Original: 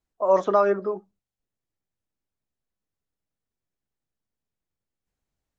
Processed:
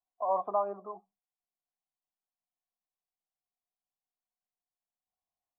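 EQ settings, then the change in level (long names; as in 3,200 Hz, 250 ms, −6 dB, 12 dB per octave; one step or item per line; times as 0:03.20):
formant resonators in series a
parametric band 210 Hz +7 dB 0.77 octaves
+3.0 dB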